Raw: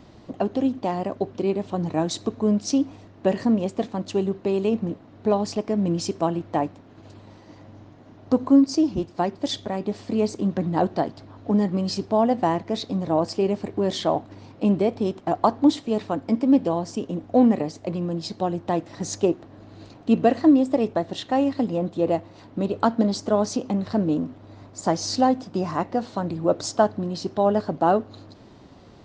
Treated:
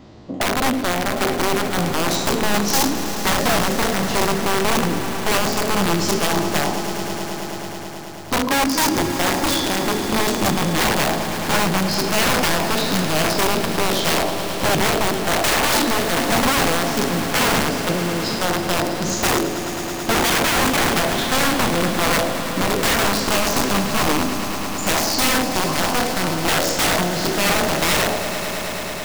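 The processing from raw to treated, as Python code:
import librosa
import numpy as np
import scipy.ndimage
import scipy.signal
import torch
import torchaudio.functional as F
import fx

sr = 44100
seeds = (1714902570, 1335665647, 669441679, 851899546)

y = fx.spec_trails(x, sr, decay_s=0.87)
y = fx.peak_eq(y, sr, hz=410.0, db=-6.0, octaves=1.5, at=(6.57, 8.76))
y = (np.mod(10.0 ** (16.0 / 20.0) * y + 1.0, 2.0) - 1.0) / 10.0 ** (16.0 / 20.0)
y = fx.echo_swell(y, sr, ms=108, loudest=5, wet_db=-14.0)
y = F.gain(torch.from_numpy(y), 2.5).numpy()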